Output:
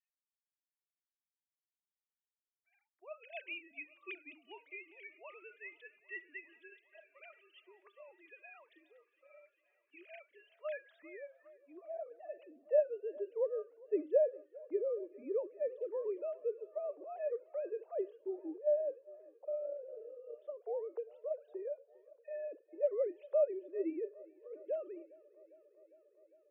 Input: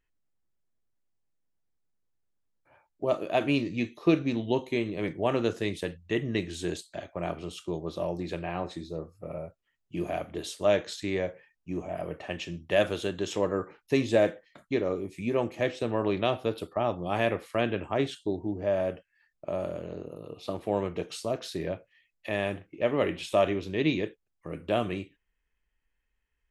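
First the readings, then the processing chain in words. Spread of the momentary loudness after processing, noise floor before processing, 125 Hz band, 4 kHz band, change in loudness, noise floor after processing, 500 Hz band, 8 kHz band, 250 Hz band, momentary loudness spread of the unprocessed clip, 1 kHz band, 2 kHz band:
22 LU, -79 dBFS, under -40 dB, under -20 dB, -9.0 dB, under -85 dBFS, -7.5 dB, under -30 dB, -19.0 dB, 13 LU, -21.0 dB, -15.0 dB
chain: sine-wave speech; thinning echo 0.403 s, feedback 79%, high-pass 190 Hz, level -23 dB; band-pass sweep 2300 Hz -> 490 Hz, 10.3–12.71; gain -5.5 dB

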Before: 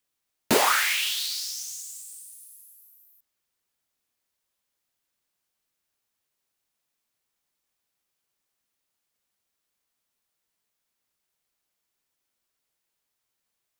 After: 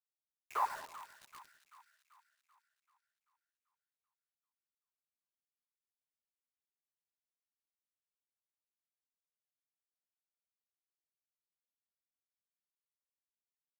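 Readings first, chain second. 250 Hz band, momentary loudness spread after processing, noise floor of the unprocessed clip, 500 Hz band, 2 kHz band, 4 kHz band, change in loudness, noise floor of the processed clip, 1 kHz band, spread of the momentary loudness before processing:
-36.5 dB, 20 LU, -81 dBFS, -24.0 dB, -24.5 dB, -33.0 dB, -15.5 dB, under -85 dBFS, -10.0 dB, 20 LU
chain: random spectral dropouts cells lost 45%; high shelf 5500 Hz -5 dB; wah 0.86 Hz 620–2200 Hz, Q 14; bit-crush 9-bit; on a send: split-band echo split 1100 Hz, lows 0.101 s, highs 0.387 s, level -12.5 dB; on the sum: gain +4.5 dB

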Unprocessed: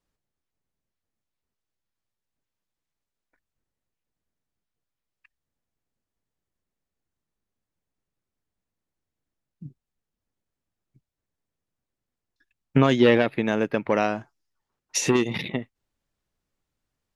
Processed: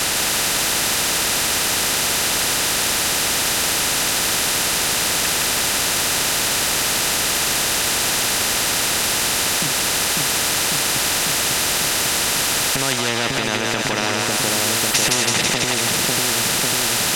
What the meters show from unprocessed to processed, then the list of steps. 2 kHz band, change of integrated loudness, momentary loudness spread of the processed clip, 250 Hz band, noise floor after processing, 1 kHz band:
+15.5 dB, +6.0 dB, 1 LU, +0.5 dB, -21 dBFS, +12.0 dB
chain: low shelf 330 Hz +8 dB; in parallel at -10 dB: requantised 6-bit, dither triangular; on the sum: compressor 6:1, threshold -31 dBFS, peak gain reduction 23 dB; LPF 6000 Hz 12 dB/oct; notch comb 1100 Hz; on a send: split-band echo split 660 Hz, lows 0.547 s, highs 0.164 s, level -4 dB; on the sum: maximiser +24 dB; spectral compressor 4:1; gain -1 dB

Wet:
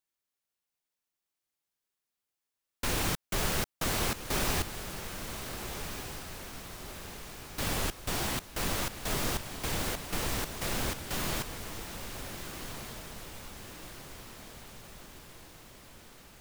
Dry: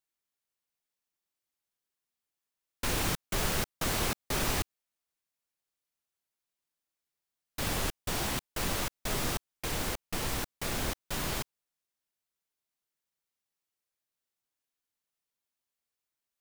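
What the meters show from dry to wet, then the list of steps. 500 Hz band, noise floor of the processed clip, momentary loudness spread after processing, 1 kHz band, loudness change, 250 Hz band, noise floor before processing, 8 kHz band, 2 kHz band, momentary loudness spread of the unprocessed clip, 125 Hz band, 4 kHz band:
+1.0 dB, under -85 dBFS, 18 LU, +1.0 dB, -1.5 dB, +1.0 dB, under -85 dBFS, +1.0 dB, +1.0 dB, 6 LU, +1.0 dB, +1.0 dB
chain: diffused feedback echo 1.466 s, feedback 58%, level -8 dB

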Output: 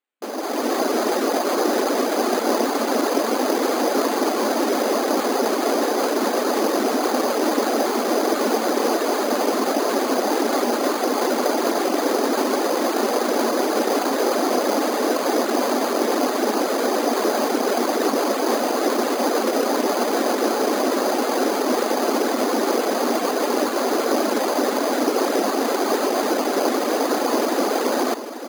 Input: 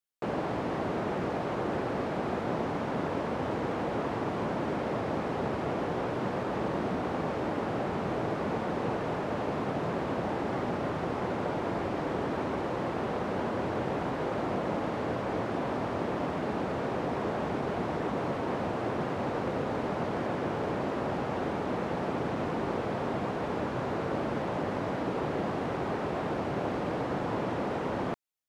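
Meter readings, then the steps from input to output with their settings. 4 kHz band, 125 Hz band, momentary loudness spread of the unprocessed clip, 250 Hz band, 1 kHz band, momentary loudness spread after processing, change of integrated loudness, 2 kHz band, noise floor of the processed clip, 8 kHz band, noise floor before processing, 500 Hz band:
+18.5 dB, under -10 dB, 1 LU, +10.5 dB, +11.0 dB, 1 LU, +11.5 dB, +11.0 dB, -24 dBFS, n/a, -34 dBFS, +12.0 dB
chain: reverb removal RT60 0.76 s; AGC gain up to 12.5 dB; careless resampling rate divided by 8×, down none, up hold; brick-wall FIR high-pass 220 Hz; notch 940 Hz, Q 17; on a send: echo 0.841 s -11.5 dB; on the sum: gain +1.5 dB

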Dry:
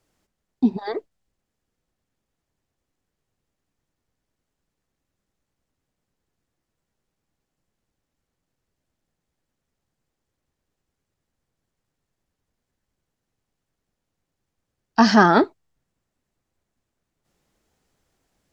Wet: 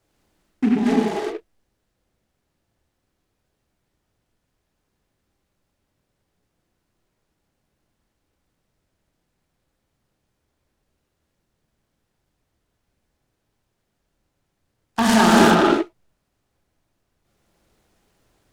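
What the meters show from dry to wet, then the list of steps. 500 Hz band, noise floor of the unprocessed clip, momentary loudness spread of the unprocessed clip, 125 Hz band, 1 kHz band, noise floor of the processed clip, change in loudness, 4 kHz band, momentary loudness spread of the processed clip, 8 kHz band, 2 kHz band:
+3.5 dB, -82 dBFS, 17 LU, +3.0 dB, +1.0 dB, -75 dBFS, +1.0 dB, +5.0 dB, 18 LU, n/a, +1.5 dB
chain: limiter -10.5 dBFS, peak gain reduction 9 dB; non-linear reverb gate 0.42 s flat, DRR -6 dB; noise-modulated delay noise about 1700 Hz, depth 0.049 ms

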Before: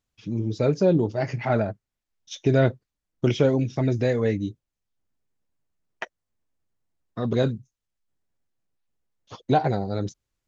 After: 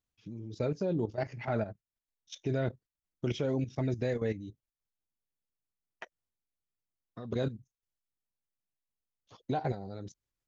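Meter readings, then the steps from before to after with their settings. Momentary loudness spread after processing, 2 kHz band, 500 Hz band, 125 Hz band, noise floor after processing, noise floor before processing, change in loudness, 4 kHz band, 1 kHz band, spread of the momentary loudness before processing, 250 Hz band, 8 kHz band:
19 LU, -10.5 dB, -11.0 dB, -10.5 dB, under -85 dBFS, -85 dBFS, -10.5 dB, -10.0 dB, -11.5 dB, 18 LU, -10.5 dB, n/a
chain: level quantiser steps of 12 dB; gain -6 dB

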